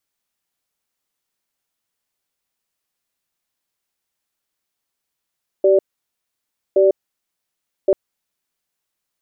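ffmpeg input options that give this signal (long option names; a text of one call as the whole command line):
ffmpeg -f lavfi -i "aevalsrc='0.237*(sin(2*PI*385*t)+sin(2*PI*584*t))*clip(min(mod(t,1.12),0.15-mod(t,1.12))/0.005,0,1)':duration=2.29:sample_rate=44100" out.wav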